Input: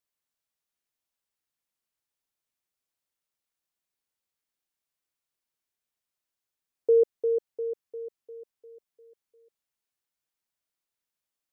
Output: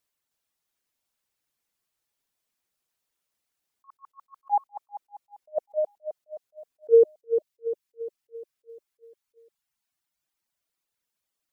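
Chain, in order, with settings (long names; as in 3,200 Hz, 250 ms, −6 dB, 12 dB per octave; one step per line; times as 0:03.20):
reverb reduction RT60 1.1 s
delay with pitch and tempo change per echo 315 ms, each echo +5 semitones, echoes 3
level that may rise only so fast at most 510 dB per second
level +6.5 dB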